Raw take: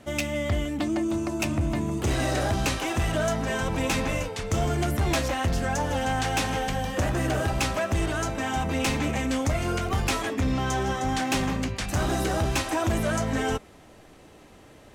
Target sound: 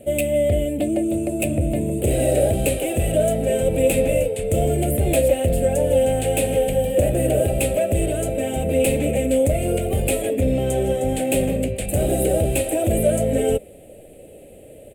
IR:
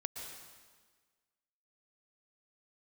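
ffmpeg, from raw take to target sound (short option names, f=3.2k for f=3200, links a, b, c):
-af "firequalizer=gain_entry='entry(330,0);entry(540,12);entry(1000,-25);entry(2500,-2);entry(5700,-21);entry(8200,8)':delay=0.05:min_phase=1,volume=4.5dB"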